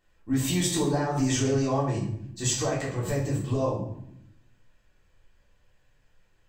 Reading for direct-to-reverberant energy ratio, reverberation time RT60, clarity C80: −7.0 dB, 0.75 s, 7.5 dB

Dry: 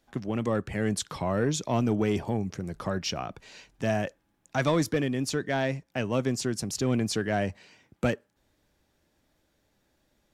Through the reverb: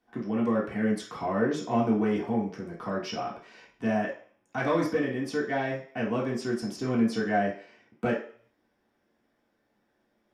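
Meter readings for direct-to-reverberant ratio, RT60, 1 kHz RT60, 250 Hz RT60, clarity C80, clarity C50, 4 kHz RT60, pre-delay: −5.5 dB, 0.50 s, 0.55 s, 0.40 s, 11.5 dB, 6.5 dB, 0.55 s, 3 ms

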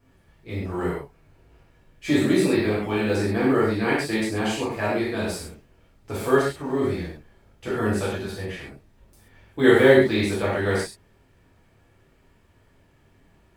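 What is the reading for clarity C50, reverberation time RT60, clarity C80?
0.5 dB, non-exponential decay, 4.5 dB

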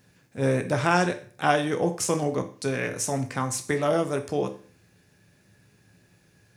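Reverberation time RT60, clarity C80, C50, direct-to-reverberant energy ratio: 0.45 s, 17.0 dB, 13.0 dB, 6.0 dB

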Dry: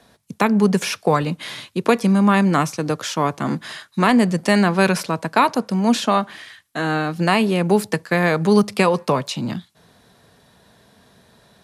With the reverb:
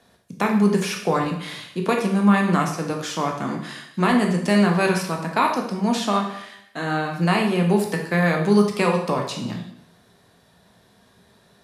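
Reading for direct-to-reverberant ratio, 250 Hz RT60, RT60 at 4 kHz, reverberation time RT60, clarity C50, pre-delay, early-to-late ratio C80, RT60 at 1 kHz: 1.0 dB, 0.75 s, 0.70 s, 0.75 s, 6.0 dB, 5 ms, 9.0 dB, 0.75 s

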